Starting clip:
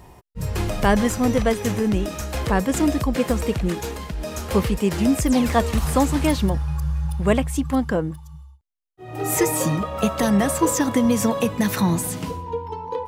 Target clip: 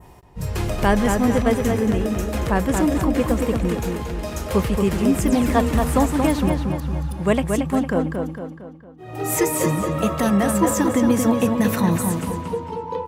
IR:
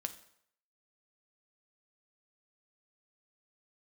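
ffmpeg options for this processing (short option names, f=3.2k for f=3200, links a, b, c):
-filter_complex "[0:a]asplit=2[a][b];[b]adelay=228,lowpass=f=3.9k:p=1,volume=-4.5dB,asplit=2[c][d];[d]adelay=228,lowpass=f=3.9k:p=1,volume=0.49,asplit=2[e][f];[f]adelay=228,lowpass=f=3.9k:p=1,volume=0.49,asplit=2[g][h];[h]adelay=228,lowpass=f=3.9k:p=1,volume=0.49,asplit=2[i][j];[j]adelay=228,lowpass=f=3.9k:p=1,volume=0.49,asplit=2[k][l];[l]adelay=228,lowpass=f=3.9k:p=1,volume=0.49[m];[c][e][g][i][k][m]amix=inputs=6:normalize=0[n];[a][n]amix=inputs=2:normalize=0,adynamicequalizer=threshold=0.00708:dfrequency=4600:dqfactor=1:tfrequency=4600:tqfactor=1:attack=5:release=100:ratio=0.375:range=2.5:mode=cutabove:tftype=bell"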